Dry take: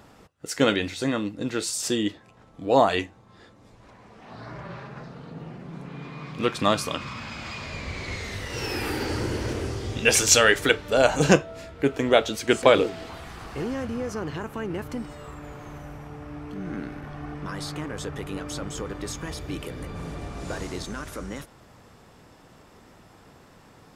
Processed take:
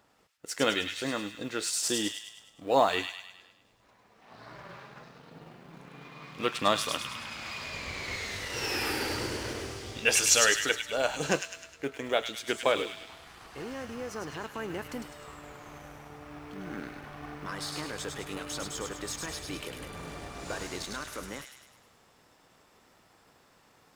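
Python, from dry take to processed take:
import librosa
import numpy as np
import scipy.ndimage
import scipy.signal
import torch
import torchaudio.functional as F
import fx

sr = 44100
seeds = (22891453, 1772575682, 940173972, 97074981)

p1 = fx.law_mismatch(x, sr, coded='A')
p2 = fx.low_shelf(p1, sr, hz=340.0, db=-9.5)
p3 = fx.rider(p2, sr, range_db=4, speed_s=2.0)
p4 = p3 + fx.echo_wet_highpass(p3, sr, ms=103, feedback_pct=52, hz=2300.0, wet_db=-3.5, dry=0)
y = p4 * librosa.db_to_amplitude(-3.5)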